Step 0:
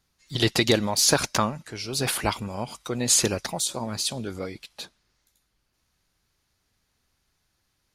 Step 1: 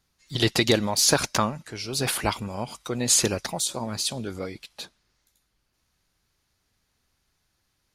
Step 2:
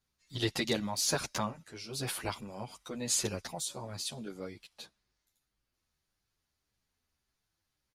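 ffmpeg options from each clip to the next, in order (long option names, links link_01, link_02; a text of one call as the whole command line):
ffmpeg -i in.wav -af anull out.wav
ffmpeg -i in.wav -filter_complex "[0:a]asplit=2[link_01][link_02];[link_02]adelay=9.6,afreqshift=-1.7[link_03];[link_01][link_03]amix=inputs=2:normalize=1,volume=-7.5dB" out.wav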